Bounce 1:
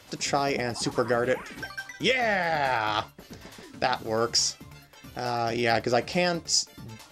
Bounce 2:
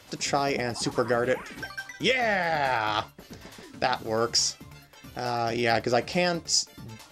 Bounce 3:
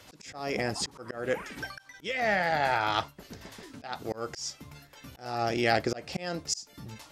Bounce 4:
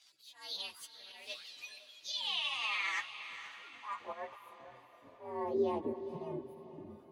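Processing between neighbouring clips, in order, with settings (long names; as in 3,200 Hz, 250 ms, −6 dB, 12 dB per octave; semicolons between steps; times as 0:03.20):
no processing that can be heard
volume swells 272 ms; level −1 dB
partials spread apart or drawn together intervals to 125%; band-pass filter sweep 4,200 Hz → 310 Hz, 0:02.14–0:05.89; feedback delay with all-pass diffusion 482 ms, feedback 42%, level −11.5 dB; level +3 dB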